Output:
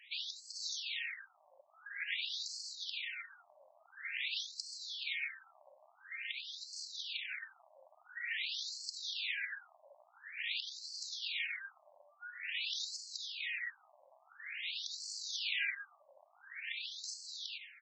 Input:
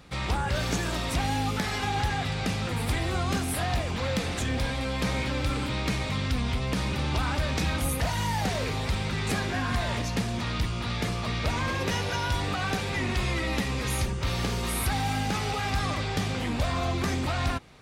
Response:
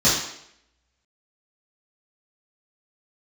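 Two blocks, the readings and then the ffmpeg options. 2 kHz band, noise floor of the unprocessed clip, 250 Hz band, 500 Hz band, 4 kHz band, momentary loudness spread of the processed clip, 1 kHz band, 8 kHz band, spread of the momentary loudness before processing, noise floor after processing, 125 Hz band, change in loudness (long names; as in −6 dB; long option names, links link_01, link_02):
−8.5 dB, −31 dBFS, below −40 dB, −34.5 dB, −6.0 dB, 12 LU, −33.0 dB, −11.0 dB, 2 LU, −69 dBFS, below −40 dB, −11.5 dB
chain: -filter_complex "[0:a]tiltshelf=frequency=1200:gain=4.5,asplit=2[link_01][link_02];[link_02]adelay=91,lowpass=frequency=1200:poles=1,volume=-9dB,asplit=2[link_03][link_04];[link_04]adelay=91,lowpass=frequency=1200:poles=1,volume=0.36,asplit=2[link_05][link_06];[link_06]adelay=91,lowpass=frequency=1200:poles=1,volume=0.36,asplit=2[link_07][link_08];[link_08]adelay=91,lowpass=frequency=1200:poles=1,volume=0.36[link_09];[link_03][link_05][link_07][link_09]amix=inputs=4:normalize=0[link_10];[link_01][link_10]amix=inputs=2:normalize=0,dynaudnorm=framelen=180:gausssize=17:maxgain=7.5dB,asuperstop=centerf=860:order=8:qfactor=0.57,lowshelf=frequency=350:gain=5.5,asplit=2[link_11][link_12];[1:a]atrim=start_sample=2205,lowpass=2600,adelay=37[link_13];[link_12][link_13]afir=irnorm=-1:irlink=0,volume=-32dB[link_14];[link_11][link_14]amix=inputs=2:normalize=0,alimiter=limit=-19dB:level=0:latency=1:release=40,afftfilt=real='re*between(b*sr/1024,780*pow(5900/780,0.5+0.5*sin(2*PI*0.48*pts/sr))/1.41,780*pow(5900/780,0.5+0.5*sin(2*PI*0.48*pts/sr))*1.41)':imag='im*between(b*sr/1024,780*pow(5900/780,0.5+0.5*sin(2*PI*0.48*pts/sr))/1.41,780*pow(5900/780,0.5+0.5*sin(2*PI*0.48*pts/sr))*1.41)':win_size=1024:overlap=0.75,volume=6dB"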